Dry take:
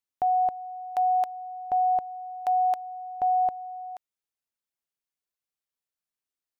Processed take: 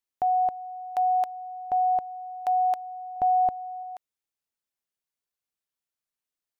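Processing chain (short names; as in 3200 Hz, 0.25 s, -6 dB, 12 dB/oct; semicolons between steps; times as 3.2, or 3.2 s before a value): 3.16–3.83 low shelf 340 Hz +8.5 dB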